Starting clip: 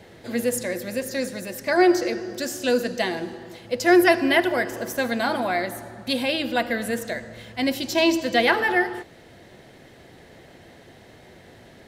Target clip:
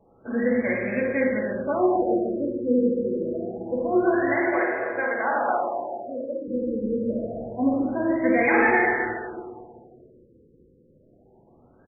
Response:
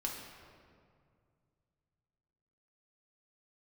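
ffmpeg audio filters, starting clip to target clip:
-filter_complex "[0:a]alimiter=limit=-14.5dB:level=0:latency=1:release=34,equalizer=f=2.2k:t=o:w=1.1:g=5.5,agate=range=-11dB:threshold=-41dB:ratio=16:detection=peak,asettb=1/sr,asplit=3[a][b][c];[a]atrim=end=4.204[d];[b]atrim=start=4.2:end=6.48,asetpts=PTS-STARTPTS,afade=t=in:d=0.004:c=qsin,afade=t=out:st=2.276:d=0.004:c=qsin,acrossover=split=400 2000:gain=0.0794 1 0.0891[e][f][g];[e][f][g]amix=inputs=3:normalize=0[h];[c]atrim=start=6.476[i];[d][h]acrossfade=d=0.004:c1=hsin:c2=qsin[j];[j][i]acrossfade=d=0.004:c1=qsin:c2=hsin,aecho=1:1:52|75:0.422|0.422[k];[1:a]atrim=start_sample=2205[l];[k][l]afir=irnorm=-1:irlink=0,afftfilt=real='re*lt(b*sr/1024,520*pow(2600/520,0.5+0.5*sin(2*PI*0.26*pts/sr)))':imag='im*lt(b*sr/1024,520*pow(2600/520,0.5+0.5*sin(2*PI*0.26*pts/sr)))':win_size=1024:overlap=0.75"

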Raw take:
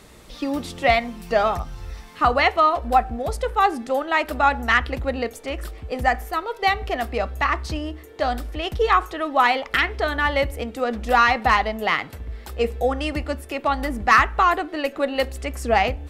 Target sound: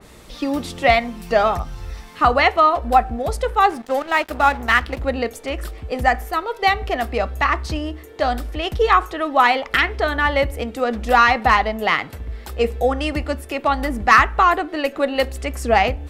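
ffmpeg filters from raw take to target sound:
-filter_complex "[0:a]asettb=1/sr,asplit=3[a][b][c];[a]atrim=end=3.704[d];[b]atrim=start=3.7:end=5.02,asetpts=PTS-STARTPTS,afade=t=in:d=0.004:c=qsin,afade=t=out:st=1.316:d=0.004:c=qsin,aeval=exprs='sgn(val(0))*max(abs(val(0))-0.0168,0)':c=same[e];[c]atrim=start=5.016[f];[d][e]acrossfade=d=0.004:c1=hsin:c2=qsin[g];[g][f]acrossfade=d=0.004:c1=qsin:c2=hsin,adynamicequalizer=threshold=0.0316:dfrequency=2400:dqfactor=0.7:tfrequency=2400:tqfactor=0.7:attack=5:release=100:ratio=0.375:range=1.5:mode=cutabove:tftype=highshelf,volume=3dB"

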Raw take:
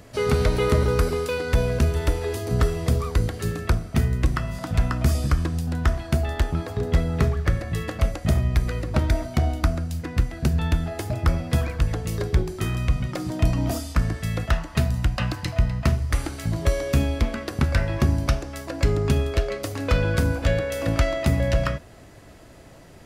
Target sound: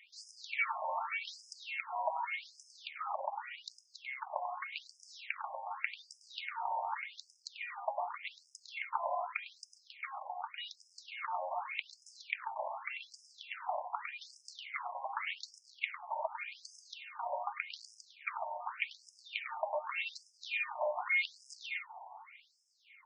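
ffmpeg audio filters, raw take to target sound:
-filter_complex "[0:a]acrossover=split=5900[a][b];[a]dynaudnorm=f=230:g=7:m=3dB[c];[b]lowpass=f=10k:w=0.5412,lowpass=f=10k:w=1.3066[d];[c][d]amix=inputs=2:normalize=0,highshelf=f=3.7k:g=3.5,aecho=1:1:99:0.398,asetrate=48091,aresample=44100,atempo=0.917004,asplit=3[e][f][g];[e]bandpass=f=300:t=q:w=8,volume=0dB[h];[f]bandpass=f=870:t=q:w=8,volume=-6dB[i];[g]bandpass=f=2.24k:t=q:w=8,volume=-9dB[j];[h][i][j]amix=inputs=3:normalize=0,acompressor=threshold=-34dB:ratio=6,aeval=exprs='clip(val(0),-1,0.00891)':c=same,equalizer=f=360:t=o:w=0.74:g=12,afftfilt=real='re*between(b*sr/1024,760*pow(7100/760,0.5+0.5*sin(2*PI*0.85*pts/sr))/1.41,760*pow(7100/760,0.5+0.5*sin(2*PI*0.85*pts/sr))*1.41)':imag='im*between(b*sr/1024,760*pow(7100/760,0.5+0.5*sin(2*PI*0.85*pts/sr))/1.41,760*pow(7100/760,0.5+0.5*sin(2*PI*0.85*pts/sr))*1.41)':win_size=1024:overlap=0.75,volume=15dB"

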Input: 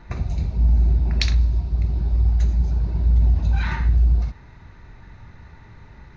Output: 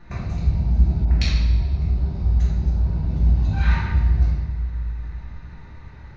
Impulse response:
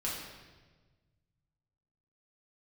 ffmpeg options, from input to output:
-filter_complex "[1:a]atrim=start_sample=2205[a];[0:a][a]afir=irnorm=-1:irlink=0,asettb=1/sr,asplit=3[b][c][d];[b]atrim=end=1.054[e];[c]atrim=start=1.05:end=3.1,asetpts=PTS-STARTPTS,afade=t=in:d=0.004:c=qsin,afade=t=out:st=2.046:d=0.004:c=qsin,adynamicequalizer=threshold=0.01:dfrequency=1700:dqfactor=0.7:tfrequency=1700:tqfactor=0.7:attack=5:release=100:ratio=0.375:range=2.5:mode=cutabove:tftype=highshelf[f];[d]atrim=start=3.096[g];[e][f]acrossfade=d=0.004:c1=hsin:c2=qsin[h];[h][g]acrossfade=d=0.004:c1=qsin:c2=hsin,volume=-2.5dB"

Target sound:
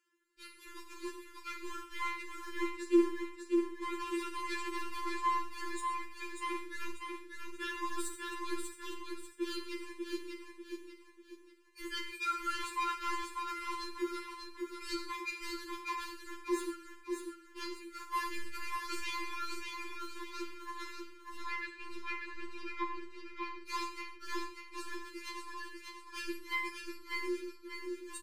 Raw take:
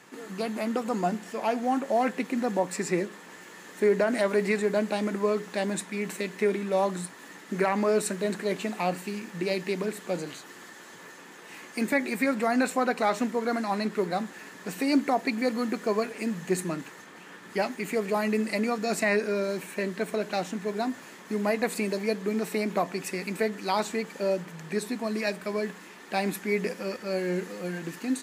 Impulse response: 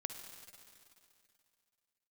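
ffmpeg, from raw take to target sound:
-filter_complex "[0:a]bandreject=f=60:t=h:w=6,bandreject=f=120:t=h:w=6,bandreject=f=180:t=h:w=6,acompressor=mode=upward:threshold=-29dB:ratio=2.5,asoftclip=type=tanh:threshold=-24.5dB,asettb=1/sr,asplit=3[a][b][c];[a]atrim=end=21.374[d];[b]atrim=start=21.37:end=23.57,asetpts=PTS-STARTPTS,afade=t=in:d=0.004:c=qsin,afade=t=out:st=2.196:d=0.004:c=qsin,lowpass=3.6k[e];[c]atrim=start=23.566[f];[d][e]acrossfade=d=0.004:c1=hsin:c2=qsin[g];[g][f]acrossfade=d=0.004:c1=qsin:c2=hsin,agate=range=-39dB:threshold=-30dB:ratio=16:detection=peak,asuperstop=centerf=660:order=20:qfactor=1.2,equalizer=f=1.9k:t=o:w=0.4:g=-4,aecho=1:1:592|1184|1776|2368|2960:0.596|0.22|0.0815|0.0302|0.0112[h];[1:a]atrim=start_sample=2205,afade=t=out:st=0.29:d=0.01,atrim=end_sample=13230,asetrate=70560,aresample=44100[i];[h][i]afir=irnorm=-1:irlink=0,afftfilt=real='re*4*eq(mod(b,16),0)':imag='im*4*eq(mod(b,16),0)':win_size=2048:overlap=0.75,volume=8dB"

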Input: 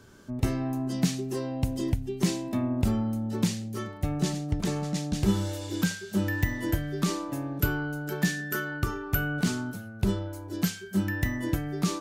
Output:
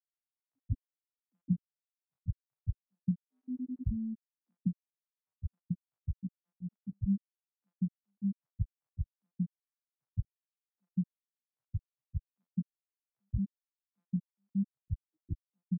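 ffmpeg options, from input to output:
-filter_complex "[0:a]afftfilt=real='re*gte(hypot(re,im),0.501)':imag='im*gte(hypot(re,im),0.501)':win_size=1024:overlap=0.75,acrossover=split=840[a][b];[a]adelay=120[c];[c][b]amix=inputs=2:normalize=0,atempo=0.76,volume=-5.5dB"

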